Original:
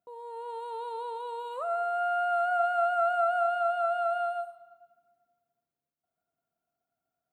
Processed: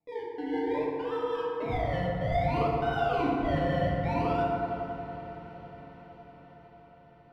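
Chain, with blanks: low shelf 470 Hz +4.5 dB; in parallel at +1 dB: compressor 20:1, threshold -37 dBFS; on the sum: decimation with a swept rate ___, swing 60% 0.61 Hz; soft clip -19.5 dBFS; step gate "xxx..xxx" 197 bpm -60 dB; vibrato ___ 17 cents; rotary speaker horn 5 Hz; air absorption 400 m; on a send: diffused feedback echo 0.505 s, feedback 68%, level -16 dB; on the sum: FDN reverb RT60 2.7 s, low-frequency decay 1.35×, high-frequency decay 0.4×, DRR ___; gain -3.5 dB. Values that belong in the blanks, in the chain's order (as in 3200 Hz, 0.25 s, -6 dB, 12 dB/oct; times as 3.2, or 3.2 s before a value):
28×, 1.1 Hz, -5.5 dB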